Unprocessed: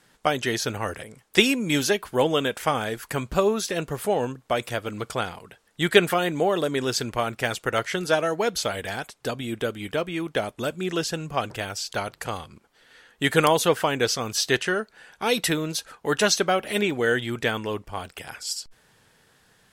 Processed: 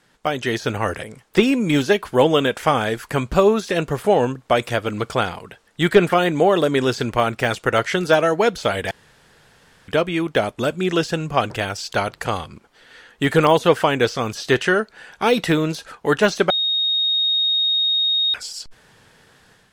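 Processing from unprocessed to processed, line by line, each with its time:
8.91–9.88 s: room tone
16.50–18.34 s: bleep 3.73 kHz -20.5 dBFS
whole clip: de-esser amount 70%; treble shelf 10 kHz -10 dB; level rider gain up to 7 dB; trim +1 dB

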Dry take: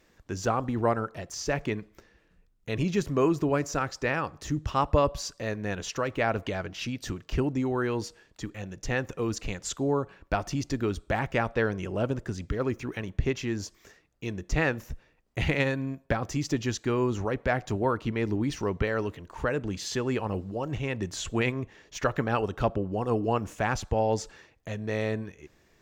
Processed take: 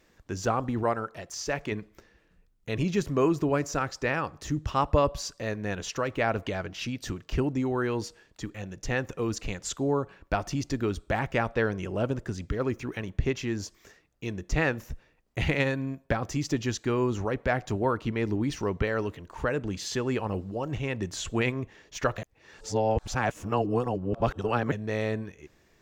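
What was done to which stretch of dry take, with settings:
0.83–1.72 s: bass shelf 350 Hz -6 dB
22.18–24.72 s: reverse

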